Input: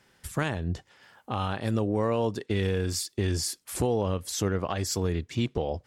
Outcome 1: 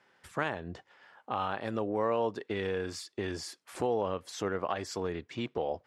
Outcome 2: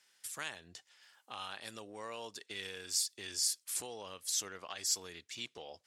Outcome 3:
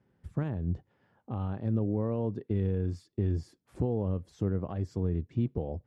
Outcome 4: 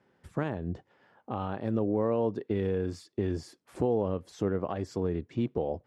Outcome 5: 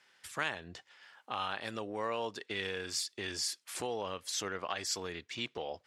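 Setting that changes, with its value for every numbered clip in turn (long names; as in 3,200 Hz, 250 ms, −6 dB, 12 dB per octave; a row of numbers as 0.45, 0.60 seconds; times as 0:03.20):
resonant band-pass, frequency: 1,000, 7,500, 130, 350, 2,700 Hertz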